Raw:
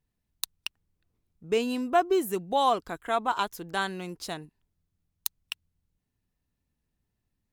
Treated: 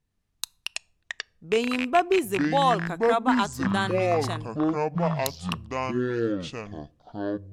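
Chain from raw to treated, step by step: rattle on loud lows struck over -36 dBFS, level -17 dBFS; low-pass 11 kHz 12 dB/octave; ever faster or slower copies 111 ms, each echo -7 st, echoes 2; on a send: reverberation RT60 0.70 s, pre-delay 5 ms, DRR 24 dB; on the sum: trim +2 dB

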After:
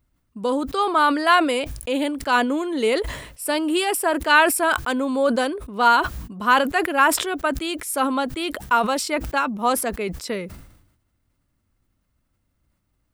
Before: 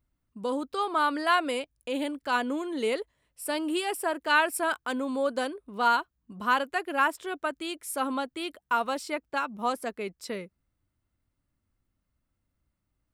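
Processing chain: decay stretcher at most 67 dB/s; trim +7.5 dB

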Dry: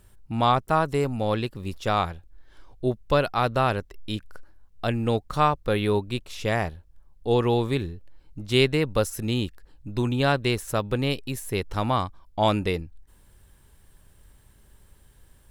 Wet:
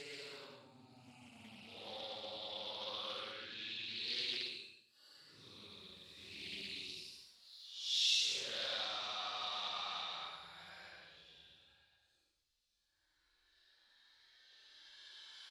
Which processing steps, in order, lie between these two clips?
compression 6:1, threshold -33 dBFS, peak gain reduction 17.5 dB; saturation -27 dBFS, distortion -18 dB; band-pass filter 4.2 kHz, Q 2.5; Paulstretch 10×, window 0.05 s, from 1.02 s; delay 78 ms -9 dB; plate-style reverb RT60 0.53 s, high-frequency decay 0.85×, pre-delay 90 ms, DRR 7 dB; loudspeaker Doppler distortion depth 0.28 ms; trim +10.5 dB

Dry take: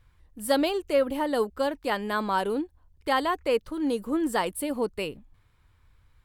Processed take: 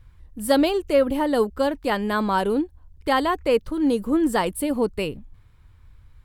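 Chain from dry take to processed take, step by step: bass shelf 250 Hz +8.5 dB; trim +3 dB

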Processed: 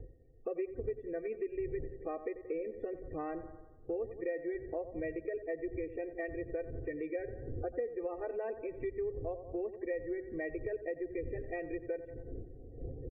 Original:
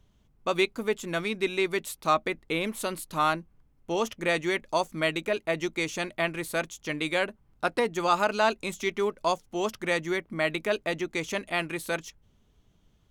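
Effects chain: wind noise 160 Hz -40 dBFS; cascade formant filter e; comb 2.6 ms, depth 98%; loudest bins only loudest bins 32; tilt shelf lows +10 dB, about 750 Hz; on a send: bucket-brigade echo 88 ms, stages 1024, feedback 47%, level -13.5 dB; on the sum: compression 4:1, threshold -42 dBFS, peak gain reduction 16.5 dB; tape noise reduction on one side only encoder only; trim +5.5 dB

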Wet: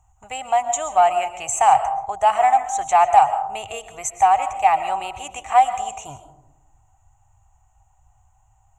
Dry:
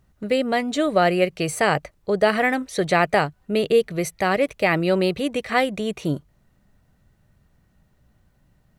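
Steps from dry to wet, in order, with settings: FFT filter 110 Hz 0 dB, 170 Hz -30 dB, 300 Hz -26 dB, 540 Hz -22 dB, 780 Hz +13 dB, 1.7 kHz -13 dB, 2.8 kHz -4 dB, 4.8 kHz -25 dB, 6.9 kHz +15 dB, 10 kHz -11 dB; algorithmic reverb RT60 0.86 s, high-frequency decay 0.25×, pre-delay 90 ms, DRR 10.5 dB; in parallel at -4 dB: saturation -11 dBFS, distortion -15 dB; on the sum: trim -1.5 dB

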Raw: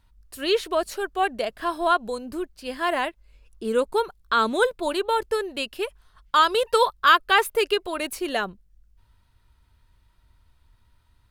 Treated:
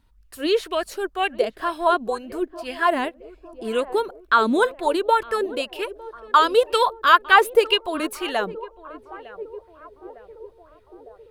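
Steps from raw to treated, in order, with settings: band-passed feedback delay 905 ms, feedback 69%, band-pass 510 Hz, level -15 dB; sweeping bell 2 Hz 250–2900 Hz +11 dB; trim -1.5 dB

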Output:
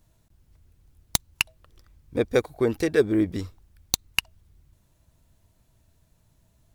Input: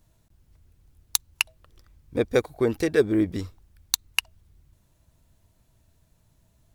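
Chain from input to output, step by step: tracing distortion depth 0.03 ms

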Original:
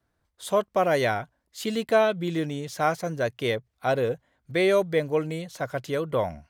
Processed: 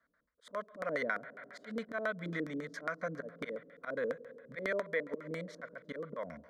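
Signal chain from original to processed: slow attack 204 ms; 4.72–5.14 s: band-pass 220–5700 Hz; spring tank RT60 2.6 s, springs 47/53 ms, chirp 45 ms, DRR 17.5 dB; LFO low-pass square 7.3 Hz 360–2200 Hz; tilt EQ +3 dB/octave; static phaser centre 540 Hz, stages 8; compression 2:1, threshold -38 dBFS, peak gain reduction 9.5 dB; trim +1 dB

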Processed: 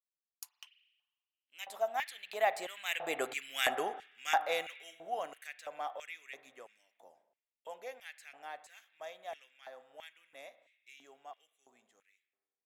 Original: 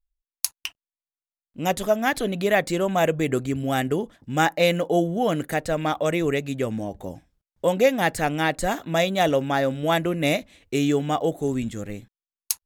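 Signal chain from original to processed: Doppler pass-by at 3.51 s, 14 m/s, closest 4.6 m; spring tank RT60 1.3 s, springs 33/37 ms, chirp 25 ms, DRR 13.5 dB; LFO high-pass square 1.5 Hz 760–2300 Hz; trim -2.5 dB

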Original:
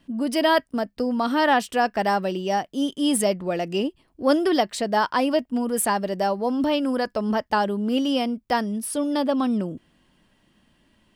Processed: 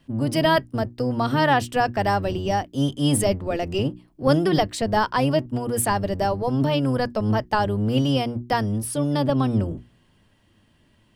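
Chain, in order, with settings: octave divider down 1 oct, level +1 dB; hum notches 60/120/180/240/300/360 Hz

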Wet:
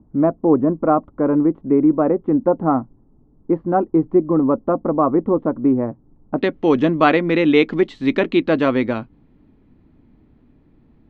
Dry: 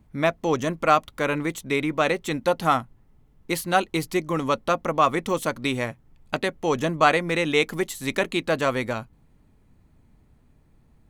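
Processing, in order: low-pass 1.1 kHz 24 dB/octave, from 6.38 s 3.9 kHz; peaking EQ 290 Hz +12 dB 1.1 oct; trim +1.5 dB

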